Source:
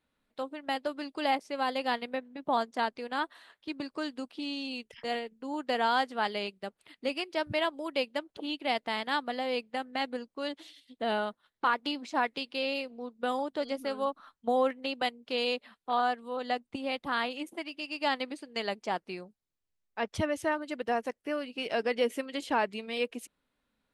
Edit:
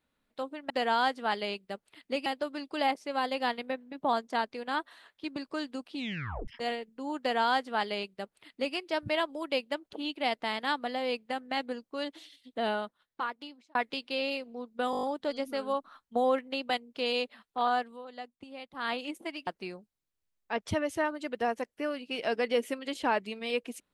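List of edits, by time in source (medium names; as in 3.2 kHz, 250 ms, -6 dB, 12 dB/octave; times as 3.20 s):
4.40 s: tape stop 0.52 s
5.63–7.19 s: copy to 0.70 s
11.07–12.19 s: fade out
13.35 s: stutter 0.02 s, 7 plays
16.17–17.25 s: dip -11 dB, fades 0.18 s
17.79–18.94 s: delete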